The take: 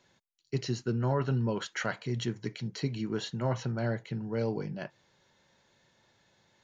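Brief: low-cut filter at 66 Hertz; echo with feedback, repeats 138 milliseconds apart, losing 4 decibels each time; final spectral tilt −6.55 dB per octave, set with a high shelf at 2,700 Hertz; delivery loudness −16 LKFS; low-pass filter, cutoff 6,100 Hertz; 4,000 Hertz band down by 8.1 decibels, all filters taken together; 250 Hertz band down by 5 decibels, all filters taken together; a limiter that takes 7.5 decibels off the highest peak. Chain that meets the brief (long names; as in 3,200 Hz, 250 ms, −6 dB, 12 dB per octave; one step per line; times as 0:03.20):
high-pass filter 66 Hz
low-pass filter 6,100 Hz
parametric band 250 Hz −6.5 dB
high-shelf EQ 2,700 Hz −8 dB
parametric band 4,000 Hz −3 dB
brickwall limiter −26.5 dBFS
repeating echo 138 ms, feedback 63%, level −4 dB
level +19.5 dB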